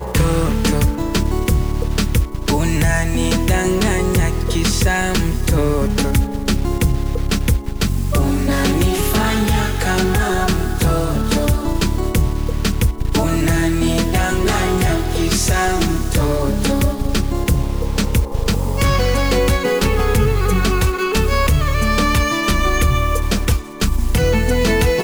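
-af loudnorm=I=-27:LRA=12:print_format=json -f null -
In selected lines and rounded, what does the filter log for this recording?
"input_i" : "-17.6",
"input_tp" : "-5.7",
"input_lra" : "1.7",
"input_thresh" : "-27.6",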